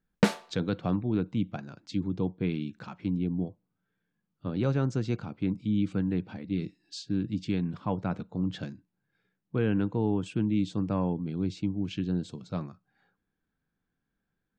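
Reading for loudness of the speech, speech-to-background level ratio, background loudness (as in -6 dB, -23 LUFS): -31.5 LUFS, -3.5 dB, -28.0 LUFS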